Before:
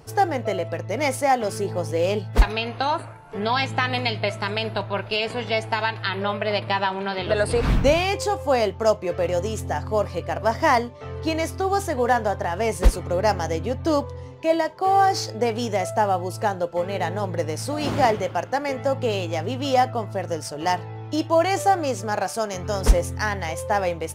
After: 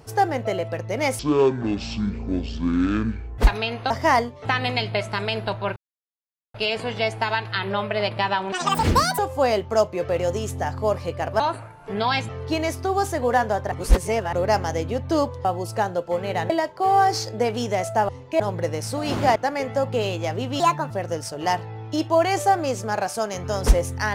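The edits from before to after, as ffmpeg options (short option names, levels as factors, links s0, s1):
-filter_complex "[0:a]asplit=19[s0][s1][s2][s3][s4][s5][s6][s7][s8][s9][s10][s11][s12][s13][s14][s15][s16][s17][s18];[s0]atrim=end=1.194[s19];[s1]atrim=start=1.19:end=2.33,asetpts=PTS-STARTPTS,asetrate=22932,aresample=44100[s20];[s2]atrim=start=2.326:end=2.852[s21];[s3]atrim=start=10.488:end=11.042[s22];[s4]atrim=start=3.738:end=5.05,asetpts=PTS-STARTPTS,afade=t=out:st=1.308:d=0.004:c=hsin,apad=pad_dur=0.78[s23];[s5]atrim=start=5.05:end=7.034,asetpts=PTS-STARTPTS,afade=t=in:d=0.004:c=hsin[s24];[s6]atrim=start=7.03:end=8.28,asetpts=PTS-STARTPTS,asetrate=82908,aresample=44100[s25];[s7]atrim=start=8.276:end=10.492[s26];[s8]atrim=start=2.848:end=3.742[s27];[s9]atrim=start=11.038:end=12.472[s28];[s10]atrim=start=12.468:end=13.082,asetpts=PTS-STARTPTS,areverse[s29];[s11]atrim=start=13.078:end=14.202[s30];[s12]atrim=start=16.098:end=17.152[s31];[s13]atrim=start=14.508:end=16.102[s32];[s14]atrim=start=14.198:end=14.512[s33];[s15]atrim=start=17.148:end=18.112[s34];[s16]atrim=start=18.448:end=19.694[s35];[s17]atrim=start=19.69:end=20.1,asetpts=PTS-STARTPTS,asetrate=59094,aresample=44100,atrim=end_sample=13493,asetpts=PTS-STARTPTS[s36];[s18]atrim=start=20.096[s37];[s19][s20]acrossfade=d=0.004:c1=hsin:c2=hsin[s38];[s38][s21]acrossfade=d=0.004:c1=hsin:c2=hsin[s39];[s39][s22]acrossfade=d=0.004:c1=hsin:c2=hsin[s40];[s23][s24]concat=n=2:v=0:a=1[s41];[s40][s41]acrossfade=d=0.004:c1=hsin:c2=hsin[s42];[s42][s25]acrossfade=d=0.004:c1=hsin:c2=hsin[s43];[s43][s26]acrossfade=d=0.004:c1=hsin:c2=hsin[s44];[s44][s27]acrossfade=d=0.004:c1=hsin:c2=hsin[s45];[s45][s28]acrossfade=d=0.004:c1=hsin:c2=hsin[s46];[s46][s29]acrossfade=d=0.004:c1=hsin:c2=hsin[s47];[s47][s30]acrossfade=d=0.004:c1=hsin:c2=hsin[s48];[s48][s31]acrossfade=d=0.004:c1=hsin:c2=hsin[s49];[s49][s32]acrossfade=d=0.004:c1=hsin:c2=hsin[s50];[s50][s33]acrossfade=d=0.004:c1=hsin:c2=hsin[s51];[s51][s34]acrossfade=d=0.004:c1=hsin:c2=hsin[s52];[s52][s35]acrossfade=d=0.004:c1=hsin:c2=hsin[s53];[s53][s36]acrossfade=d=0.004:c1=hsin:c2=hsin[s54];[s54][s37]acrossfade=d=0.004:c1=hsin:c2=hsin"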